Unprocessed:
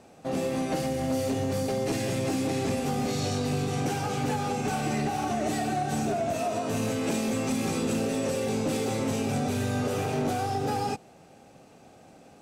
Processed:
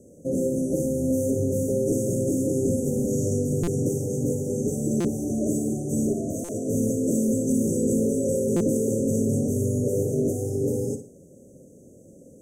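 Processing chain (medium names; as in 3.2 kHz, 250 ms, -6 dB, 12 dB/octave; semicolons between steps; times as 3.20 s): Chebyshev band-stop 560–6300 Hz, order 5; on a send: flutter echo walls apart 10 m, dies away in 0.36 s; on the sum: buffer glitch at 3.63/5.00/6.44/8.56 s, samples 256, times 7; trim +5.5 dB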